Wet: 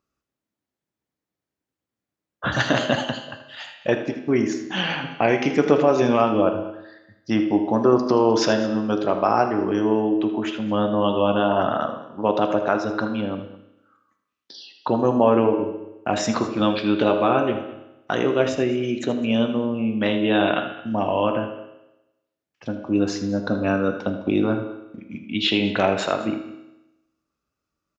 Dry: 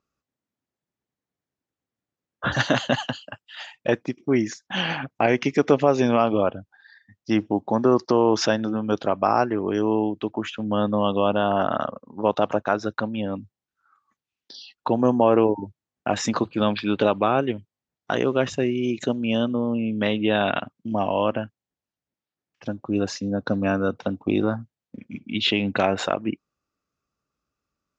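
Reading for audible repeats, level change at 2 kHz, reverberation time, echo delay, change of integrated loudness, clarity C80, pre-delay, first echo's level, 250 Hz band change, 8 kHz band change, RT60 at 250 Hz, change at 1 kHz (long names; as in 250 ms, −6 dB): 2, +1.5 dB, 0.90 s, 79 ms, +1.5 dB, 9.5 dB, 9 ms, −12.5 dB, +2.0 dB, can't be measured, 0.95 s, +1.0 dB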